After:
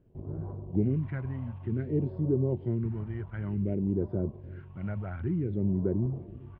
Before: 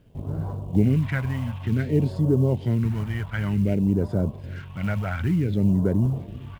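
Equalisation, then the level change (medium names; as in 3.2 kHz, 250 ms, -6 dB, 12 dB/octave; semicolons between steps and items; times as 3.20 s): low-pass 1.2 kHz 6 dB/octave; distance through air 300 m; peaking EQ 360 Hz +11 dB 0.27 oct; -8.0 dB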